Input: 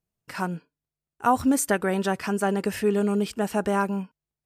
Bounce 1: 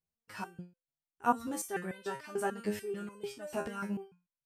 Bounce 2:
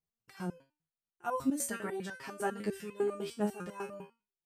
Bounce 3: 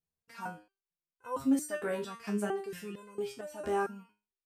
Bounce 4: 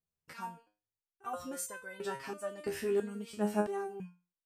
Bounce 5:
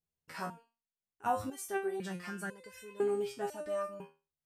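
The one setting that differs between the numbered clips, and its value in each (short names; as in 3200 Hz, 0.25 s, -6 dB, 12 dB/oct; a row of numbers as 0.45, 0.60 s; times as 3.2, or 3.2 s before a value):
stepped resonator, rate: 6.8, 10, 4.4, 3, 2 Hz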